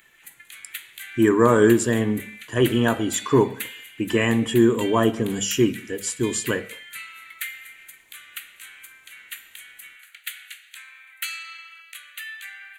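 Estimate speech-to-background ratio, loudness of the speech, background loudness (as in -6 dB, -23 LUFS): 16.0 dB, -21.0 LUFS, -37.0 LUFS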